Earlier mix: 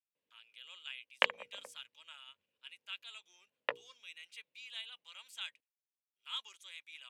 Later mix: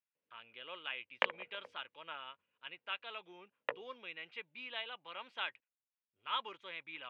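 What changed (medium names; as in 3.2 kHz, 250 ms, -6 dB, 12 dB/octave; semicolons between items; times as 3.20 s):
speech: remove differentiator; master: add distance through air 330 m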